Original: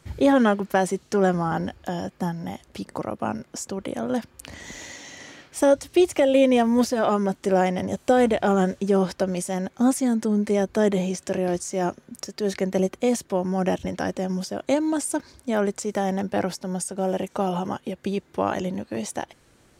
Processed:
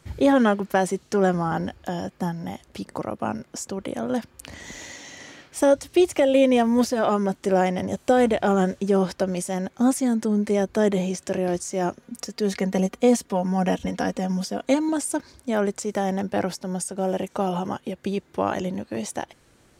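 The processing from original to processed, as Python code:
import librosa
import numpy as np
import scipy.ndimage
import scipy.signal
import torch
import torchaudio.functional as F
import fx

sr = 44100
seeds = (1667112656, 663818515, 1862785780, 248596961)

y = fx.comb(x, sr, ms=4.2, depth=0.65, at=(12.02, 14.89))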